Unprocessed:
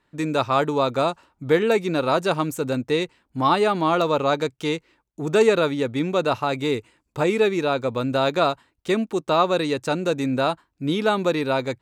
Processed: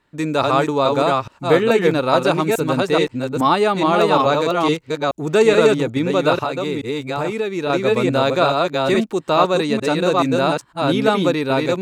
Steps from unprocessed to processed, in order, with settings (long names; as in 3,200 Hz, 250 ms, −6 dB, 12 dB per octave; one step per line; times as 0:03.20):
delay that plays each chunk backwards 426 ms, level −2 dB
0:06.36–0:07.70: downward compressor, threshold −22 dBFS, peak gain reduction 8 dB
level +3 dB